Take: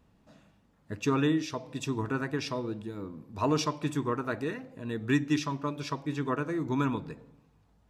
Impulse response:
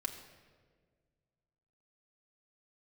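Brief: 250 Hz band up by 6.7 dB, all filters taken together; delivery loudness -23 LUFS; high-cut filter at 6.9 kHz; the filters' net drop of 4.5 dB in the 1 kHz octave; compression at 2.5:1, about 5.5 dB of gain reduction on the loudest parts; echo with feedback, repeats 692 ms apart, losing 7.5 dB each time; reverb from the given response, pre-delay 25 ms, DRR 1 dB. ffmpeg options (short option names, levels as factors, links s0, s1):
-filter_complex "[0:a]lowpass=6900,equalizer=f=250:t=o:g=8.5,equalizer=f=1000:t=o:g=-5.5,acompressor=threshold=0.0631:ratio=2.5,aecho=1:1:692|1384|2076|2768|3460:0.422|0.177|0.0744|0.0312|0.0131,asplit=2[s0][s1];[1:a]atrim=start_sample=2205,adelay=25[s2];[s1][s2]afir=irnorm=-1:irlink=0,volume=0.841[s3];[s0][s3]amix=inputs=2:normalize=0,volume=1.41"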